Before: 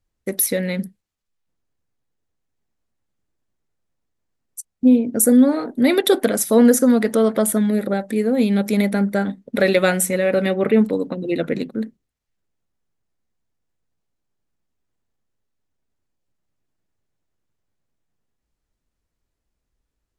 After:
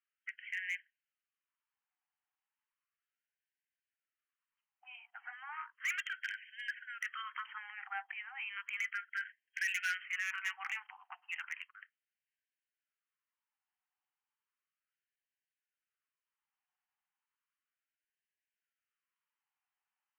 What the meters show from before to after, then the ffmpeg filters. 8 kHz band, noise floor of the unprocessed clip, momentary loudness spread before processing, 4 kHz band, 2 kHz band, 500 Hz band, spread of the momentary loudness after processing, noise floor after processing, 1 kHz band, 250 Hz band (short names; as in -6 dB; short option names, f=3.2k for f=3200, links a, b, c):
-29.0 dB, -79 dBFS, 12 LU, -16.0 dB, -8.5 dB, under -40 dB, 14 LU, under -85 dBFS, -17.0 dB, under -40 dB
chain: -filter_complex "[0:a]afftfilt=real='re*between(b*sr/4096,120,3200)':imag='im*between(b*sr/4096,120,3200)':win_size=4096:overlap=0.75,bandreject=f=60:t=h:w=6,bandreject=f=120:t=h:w=6,bandreject=f=180:t=h:w=6,bandreject=f=240:t=h:w=6,bandreject=f=300:t=h:w=6,acrossover=split=1500[a][b];[a]acompressor=threshold=-30dB:ratio=6[c];[b]asoftclip=type=hard:threshold=-28dB[d];[c][d]amix=inputs=2:normalize=0,afftfilt=real='re*gte(b*sr/1024,690*pow(1500/690,0.5+0.5*sin(2*PI*0.34*pts/sr)))':imag='im*gte(b*sr/1024,690*pow(1500/690,0.5+0.5*sin(2*PI*0.34*pts/sr)))':win_size=1024:overlap=0.75,volume=-3.5dB"